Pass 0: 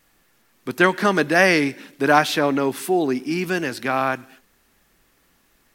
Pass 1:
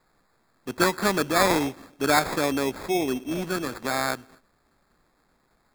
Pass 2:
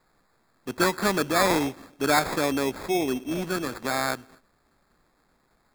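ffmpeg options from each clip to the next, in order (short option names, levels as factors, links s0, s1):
-af "acrusher=samples=15:mix=1:aa=0.000001,tremolo=f=200:d=0.261,volume=0.631"
-af "asoftclip=type=tanh:threshold=0.355"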